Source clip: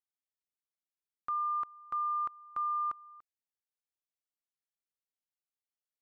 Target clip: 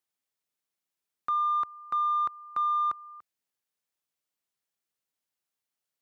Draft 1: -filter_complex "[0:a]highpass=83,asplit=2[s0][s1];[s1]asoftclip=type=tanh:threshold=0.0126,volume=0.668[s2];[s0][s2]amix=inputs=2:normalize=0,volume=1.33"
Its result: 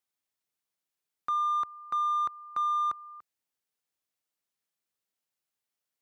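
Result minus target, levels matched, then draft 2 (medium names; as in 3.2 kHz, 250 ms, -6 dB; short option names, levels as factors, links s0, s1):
saturation: distortion +8 dB
-filter_complex "[0:a]highpass=83,asplit=2[s0][s1];[s1]asoftclip=type=tanh:threshold=0.0282,volume=0.668[s2];[s0][s2]amix=inputs=2:normalize=0,volume=1.33"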